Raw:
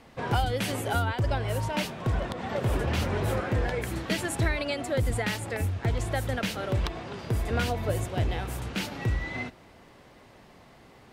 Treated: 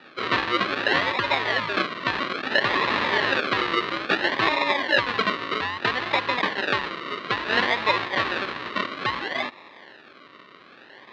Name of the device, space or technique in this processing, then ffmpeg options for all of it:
circuit-bent sampling toy: -af "acrusher=samples=41:mix=1:aa=0.000001:lfo=1:lforange=24.6:lforate=0.6,highpass=420,equalizer=f=480:t=q:w=4:g=-5,equalizer=f=710:t=q:w=4:g=-7,equalizer=f=1.1k:t=q:w=4:g=8,equalizer=f=1.8k:t=q:w=4:g=9,equalizer=f=2.7k:t=q:w=4:g=5,equalizer=f=4k:t=q:w=4:g=8,lowpass=f=4.1k:w=0.5412,lowpass=f=4.1k:w=1.3066,volume=9dB"

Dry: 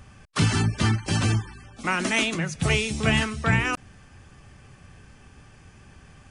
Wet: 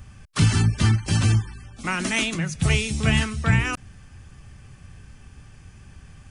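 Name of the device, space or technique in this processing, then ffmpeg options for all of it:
smiley-face EQ: -af "lowshelf=f=170:g=7.5,equalizer=f=510:t=o:w=2.6:g=-4,highshelf=f=9k:g=5.5"

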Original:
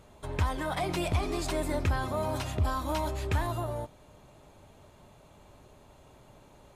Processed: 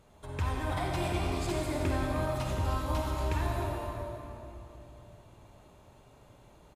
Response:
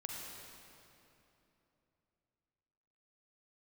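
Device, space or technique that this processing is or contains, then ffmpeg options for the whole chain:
cave: -filter_complex "[0:a]aecho=1:1:309:0.266[a];[1:a]atrim=start_sample=2205[b];[a][b]afir=irnorm=-1:irlink=0,volume=-1.5dB"

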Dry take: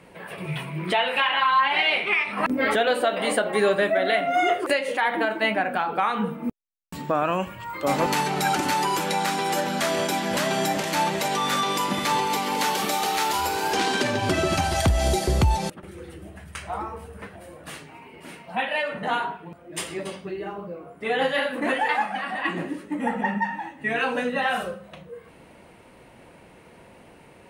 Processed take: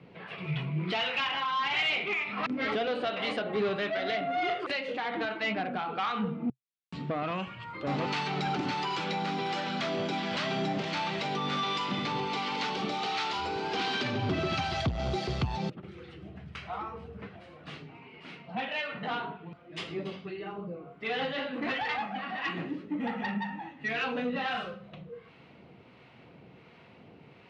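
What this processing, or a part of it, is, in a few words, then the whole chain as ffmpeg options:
guitar amplifier with harmonic tremolo: -filter_complex "[0:a]acrossover=split=740[a][b];[a]aeval=exprs='val(0)*(1-0.5/2+0.5/2*cos(2*PI*1.4*n/s))':c=same[c];[b]aeval=exprs='val(0)*(1-0.5/2-0.5/2*cos(2*PI*1.4*n/s))':c=same[d];[c][d]amix=inputs=2:normalize=0,asoftclip=type=tanh:threshold=-22.5dB,highpass=95,equalizer=f=130:t=q:w=4:g=6,equalizer=f=330:t=q:w=4:g=-3,equalizer=f=570:t=q:w=4:g=-7,equalizer=f=930:t=q:w=4:g=-6,equalizer=f=1.7k:t=q:w=4:g=-6,lowpass=f=4.5k:w=0.5412,lowpass=f=4.5k:w=1.3066"

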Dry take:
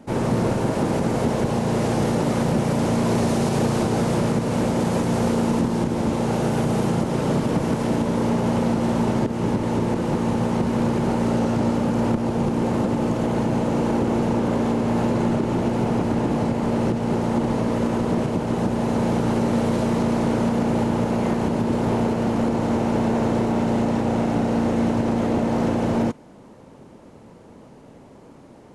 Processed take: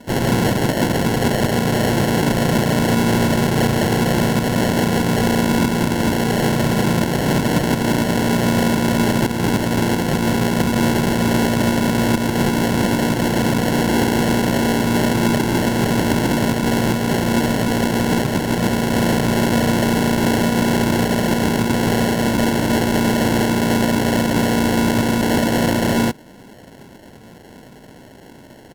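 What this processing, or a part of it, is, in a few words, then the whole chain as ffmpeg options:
crushed at another speed: -af "asetrate=55125,aresample=44100,acrusher=samples=29:mix=1:aa=0.000001,asetrate=35280,aresample=44100,volume=4dB"

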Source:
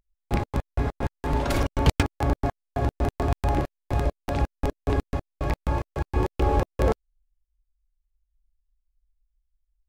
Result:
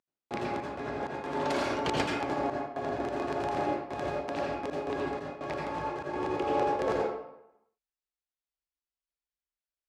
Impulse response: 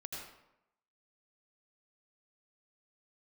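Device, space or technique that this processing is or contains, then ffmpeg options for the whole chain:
supermarket ceiling speaker: -filter_complex "[0:a]highpass=280,lowpass=6.9k[a];[1:a]atrim=start_sample=2205[b];[a][b]afir=irnorm=-1:irlink=0"

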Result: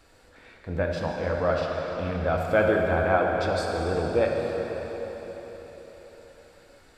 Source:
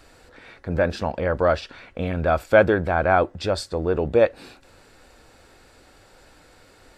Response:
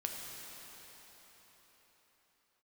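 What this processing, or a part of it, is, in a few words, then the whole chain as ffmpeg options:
cathedral: -filter_complex "[1:a]atrim=start_sample=2205[a];[0:a][a]afir=irnorm=-1:irlink=0,volume=-5dB"

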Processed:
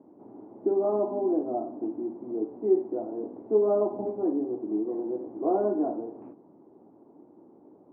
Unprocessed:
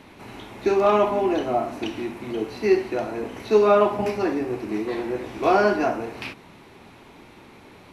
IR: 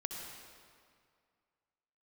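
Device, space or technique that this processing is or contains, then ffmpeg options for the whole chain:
under water: -af "highpass=210,lowpass=f=780:w=0.5412,lowpass=f=780:w=1.3066,equalizer=f=310:t=o:w=0.54:g=8.5,equalizer=f=2k:t=o:w=0.77:g=-2,volume=-7.5dB"

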